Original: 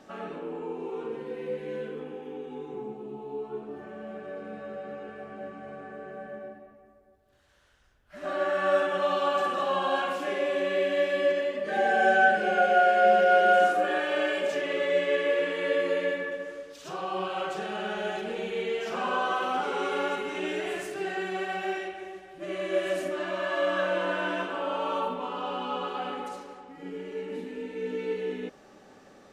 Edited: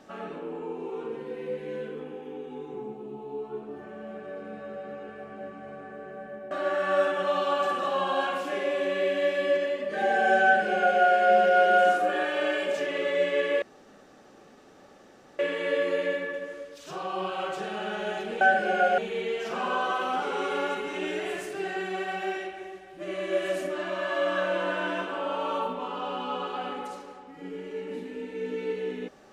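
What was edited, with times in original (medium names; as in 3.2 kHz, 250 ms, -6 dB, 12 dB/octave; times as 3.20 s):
6.51–8.26 s: delete
12.19–12.76 s: copy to 18.39 s
15.37 s: insert room tone 1.77 s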